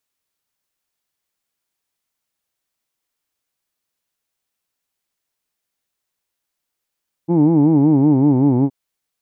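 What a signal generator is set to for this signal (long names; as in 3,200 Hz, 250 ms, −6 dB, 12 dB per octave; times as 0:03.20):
vowel by formant synthesis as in who'd, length 1.42 s, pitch 162 Hz, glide −4 semitones, vibrato depth 1.4 semitones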